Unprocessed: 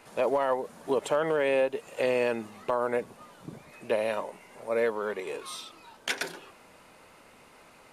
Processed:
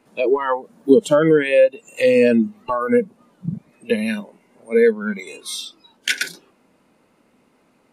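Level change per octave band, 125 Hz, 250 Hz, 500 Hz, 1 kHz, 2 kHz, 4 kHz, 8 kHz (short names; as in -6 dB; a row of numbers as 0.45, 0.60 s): +15.5, +17.0, +10.5, +5.5, +9.5, +10.5, +10.5 dB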